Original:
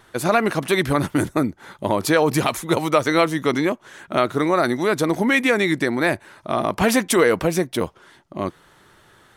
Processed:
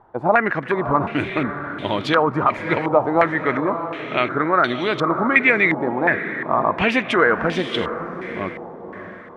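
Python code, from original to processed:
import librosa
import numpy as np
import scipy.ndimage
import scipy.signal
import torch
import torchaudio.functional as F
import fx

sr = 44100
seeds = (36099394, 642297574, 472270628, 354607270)

y = fx.echo_diffused(x, sr, ms=610, feedback_pct=45, wet_db=-9.0)
y = fx.filter_held_lowpass(y, sr, hz=2.8, low_hz=850.0, high_hz=3200.0)
y = F.gain(torch.from_numpy(y), -3.0).numpy()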